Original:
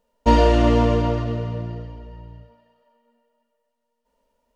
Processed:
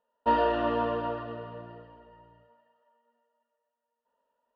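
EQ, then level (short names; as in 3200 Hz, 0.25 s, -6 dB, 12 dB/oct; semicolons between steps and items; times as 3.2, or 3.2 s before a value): band-pass 1500 Hz, Q 0.7; Butterworth band-stop 2200 Hz, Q 3.8; air absorption 300 m; -1.5 dB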